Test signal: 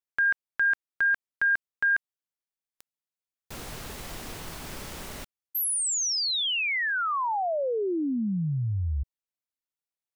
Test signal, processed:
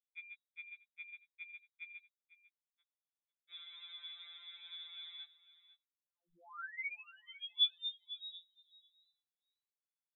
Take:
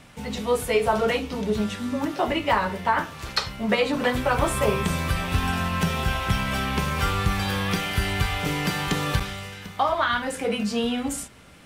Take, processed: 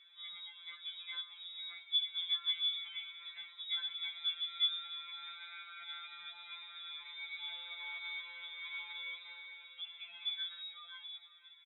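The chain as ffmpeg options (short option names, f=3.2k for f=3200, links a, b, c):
-filter_complex "[0:a]bandreject=f=50:t=h:w=6,bandreject=f=100:t=h:w=6,bandreject=f=150:t=h:w=6,bandreject=f=200:t=h:w=6,bandreject=f=250:t=h:w=6,acompressor=threshold=-34dB:ratio=6:attack=26:release=31:knee=6:detection=peak,asoftclip=type=tanh:threshold=-27dB,asplit=3[a][b][c];[a]bandpass=f=530:t=q:w=8,volume=0dB[d];[b]bandpass=f=1.84k:t=q:w=8,volume=-6dB[e];[c]bandpass=f=2.48k:t=q:w=8,volume=-9dB[f];[d][e][f]amix=inputs=3:normalize=0,adynamicsmooth=sensitivity=6.5:basefreq=1.6k,aecho=1:1:499:0.15,lowpass=f=3.4k:t=q:w=0.5098,lowpass=f=3.4k:t=q:w=0.6013,lowpass=f=3.4k:t=q:w=0.9,lowpass=f=3.4k:t=q:w=2.563,afreqshift=-4000,afftfilt=real='re*2.83*eq(mod(b,8),0)':imag='im*2.83*eq(mod(b,8),0)':win_size=2048:overlap=0.75,volume=5.5dB"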